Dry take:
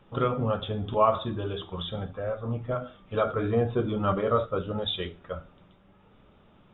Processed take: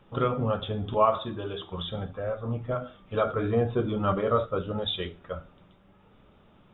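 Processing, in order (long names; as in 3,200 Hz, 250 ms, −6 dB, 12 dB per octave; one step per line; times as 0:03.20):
0:01.05–0:01.71: low-shelf EQ 190 Hz −7 dB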